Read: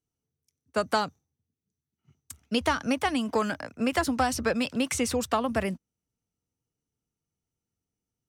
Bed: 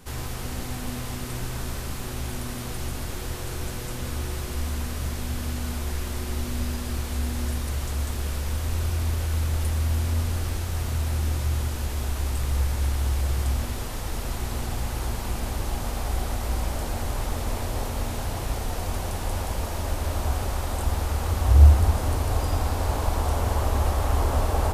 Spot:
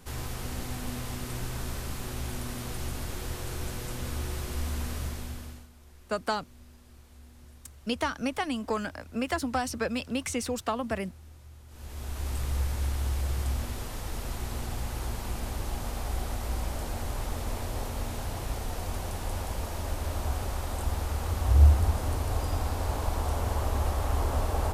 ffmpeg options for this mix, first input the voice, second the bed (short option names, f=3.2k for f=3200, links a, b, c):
-filter_complex "[0:a]adelay=5350,volume=-4dB[a];[1:a]volume=16dB,afade=t=out:st=4.94:d=0.74:silence=0.0891251,afade=t=in:st=11.67:d=0.67:silence=0.105925[b];[a][b]amix=inputs=2:normalize=0"